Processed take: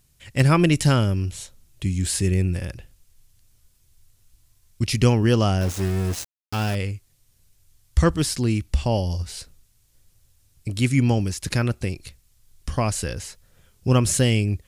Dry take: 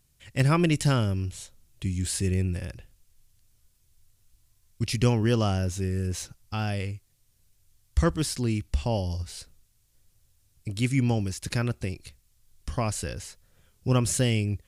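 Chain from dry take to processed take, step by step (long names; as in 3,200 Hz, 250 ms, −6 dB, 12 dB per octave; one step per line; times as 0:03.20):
0:05.61–0:06.75: centre clipping without the shift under −33.5 dBFS
level +5 dB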